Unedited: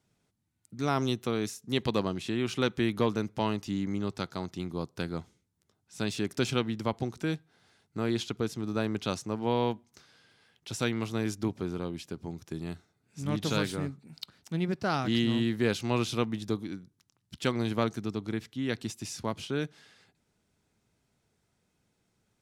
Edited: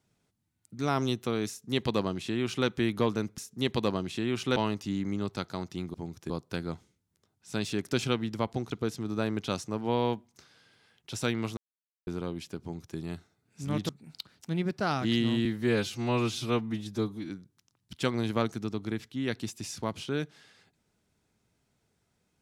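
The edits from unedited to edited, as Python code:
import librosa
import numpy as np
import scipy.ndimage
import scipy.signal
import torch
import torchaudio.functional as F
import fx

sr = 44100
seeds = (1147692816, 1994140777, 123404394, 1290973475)

y = fx.edit(x, sr, fx.duplicate(start_s=1.49, length_s=1.18, to_s=3.38),
    fx.cut(start_s=7.17, length_s=1.12),
    fx.silence(start_s=11.15, length_s=0.5),
    fx.duplicate(start_s=12.19, length_s=0.36, to_s=4.76),
    fx.cut(start_s=13.47, length_s=0.45),
    fx.stretch_span(start_s=15.48, length_s=1.23, factor=1.5), tone=tone)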